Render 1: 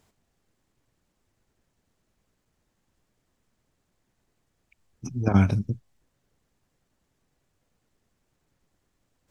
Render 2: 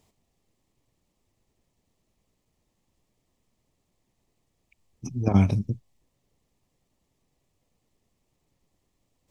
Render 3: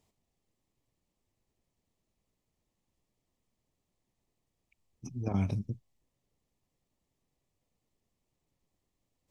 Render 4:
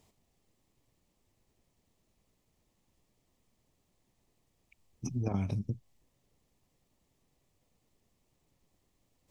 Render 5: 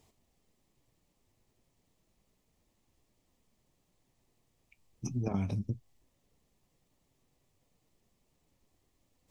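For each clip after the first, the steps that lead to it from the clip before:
bell 1500 Hz -14 dB 0.34 oct
limiter -11.5 dBFS, peak gain reduction 5 dB; gain -8 dB
compressor 4:1, threshold -37 dBFS, peak gain reduction 11 dB; gain +7 dB
flange 0.34 Hz, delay 2.4 ms, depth 6.1 ms, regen -67%; gain +4.5 dB

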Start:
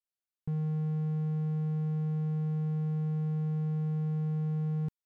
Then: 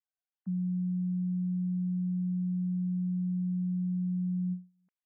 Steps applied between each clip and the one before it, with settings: sine-wave speech; ending taper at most 200 dB/s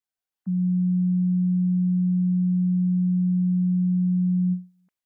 AGC gain up to 7 dB; gain +2.5 dB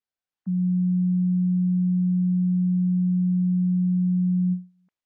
air absorption 87 m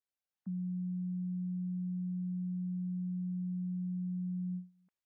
limiter -27.5 dBFS, peak gain reduction 9 dB; gain -6 dB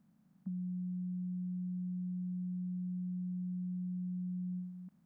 per-bin compression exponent 0.4; compressor 4:1, threshold -39 dBFS, peak gain reduction 4 dB; gain +1.5 dB

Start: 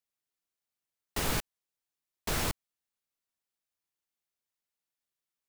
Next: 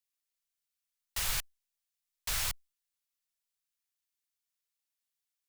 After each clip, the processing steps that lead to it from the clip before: passive tone stack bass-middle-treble 10-0-10; gain +2.5 dB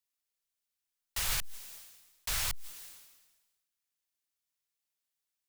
sustainer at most 47 dB/s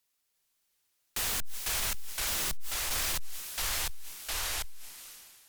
echoes that change speed 0.357 s, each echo -2 st, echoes 3; sine folder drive 14 dB, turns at -19 dBFS; gain -8.5 dB

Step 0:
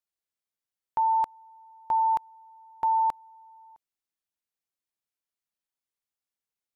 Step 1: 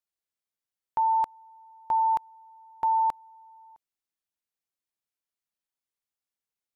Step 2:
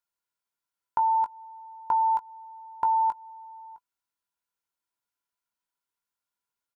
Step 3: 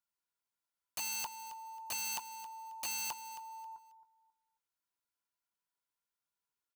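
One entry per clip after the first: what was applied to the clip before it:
nothing audible
compressor 4:1, threshold -30 dBFS, peak gain reduction 7 dB; doubler 19 ms -9.5 dB; small resonant body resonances 990/1400 Hz, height 15 dB, ringing for 45 ms
wrapped overs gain 27.5 dB; feedback echo 0.27 s, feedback 27%, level -14 dB; gain -4.5 dB

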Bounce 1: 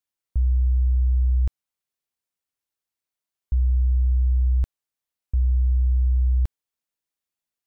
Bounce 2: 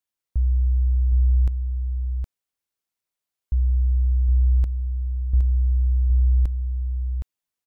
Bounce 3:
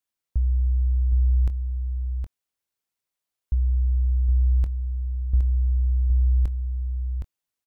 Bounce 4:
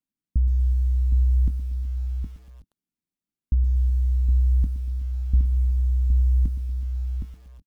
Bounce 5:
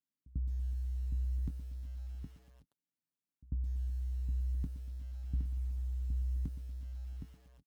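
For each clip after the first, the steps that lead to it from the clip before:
echo 0.766 s -6 dB
doubler 23 ms -14 dB
EQ curve 120 Hz 0 dB, 180 Hz +9 dB, 270 Hz +9 dB, 500 Hz -12 dB; outdoor echo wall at 64 m, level -20 dB; lo-fi delay 0.118 s, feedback 55%, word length 8-bit, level -14.5 dB; gain +2 dB
HPF 75 Hz; comb 7.1 ms, depth 34%; pre-echo 95 ms -22 dB; gain -8 dB

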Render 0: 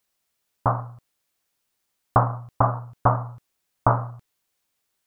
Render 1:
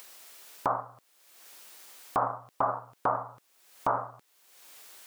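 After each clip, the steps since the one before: HPF 370 Hz 12 dB/oct; limiter -15.5 dBFS, peak gain reduction 10 dB; upward compressor, threshold -30 dBFS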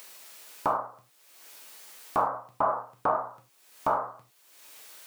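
non-linear reverb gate 0.13 s falling, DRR 2 dB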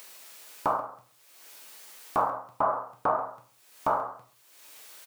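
echo 0.136 s -16 dB

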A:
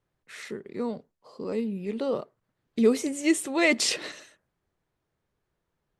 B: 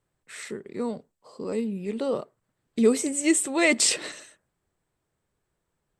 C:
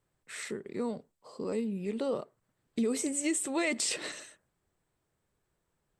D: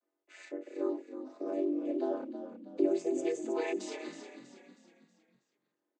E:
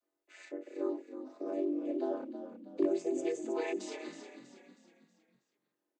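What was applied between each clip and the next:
bell 8000 Hz +13.5 dB 0.2 oct; gain +1 dB
limiter -16 dBFS, peak gain reduction 7 dB; compressor 1.5:1, threshold -34 dBFS, peak gain reduction 5.5 dB; gain -1 dB
chord vocoder major triad, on F#3; frequency shift +110 Hz; frequency-shifting echo 0.32 s, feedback 45%, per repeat -32 Hz, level -10 dB
hard clip -18.5 dBFS, distortion -31 dB; gain -1.5 dB

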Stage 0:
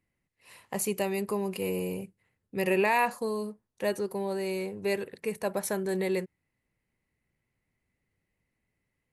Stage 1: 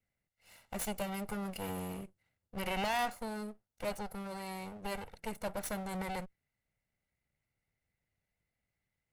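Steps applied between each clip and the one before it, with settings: minimum comb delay 1.4 ms; gain -5 dB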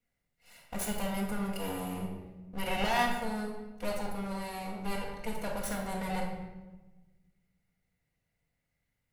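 reverb RT60 1.2 s, pre-delay 4 ms, DRR -1.5 dB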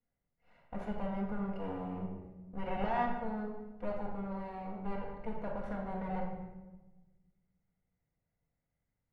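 LPF 1300 Hz 12 dB/oct; gain -2.5 dB

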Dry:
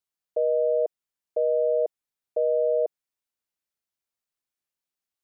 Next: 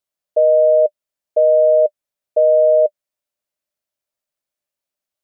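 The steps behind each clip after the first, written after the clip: bell 600 Hz +13.5 dB 0.23 oct; gain +2.5 dB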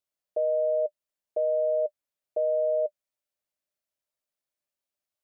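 limiter -15 dBFS, peak gain reduction 8.5 dB; gain -5 dB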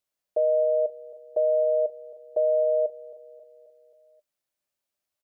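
feedback echo 0.267 s, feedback 56%, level -17 dB; gain +3.5 dB

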